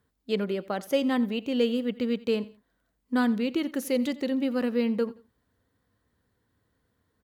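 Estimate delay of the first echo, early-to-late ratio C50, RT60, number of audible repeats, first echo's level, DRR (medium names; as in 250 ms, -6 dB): 87 ms, no reverb, no reverb, 2, -19.5 dB, no reverb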